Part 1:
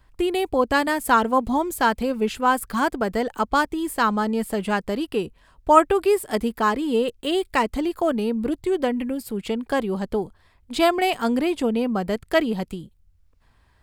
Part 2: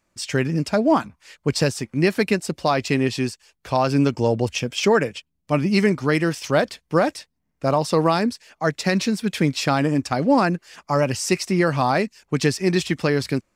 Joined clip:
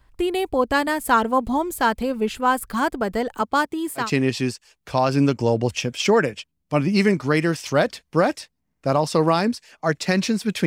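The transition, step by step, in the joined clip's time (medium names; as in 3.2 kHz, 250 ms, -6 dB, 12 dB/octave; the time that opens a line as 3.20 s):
part 1
3.41–4.11 s: high-pass 120 Hz 12 dB/octave
4.03 s: go over to part 2 from 2.81 s, crossfade 0.16 s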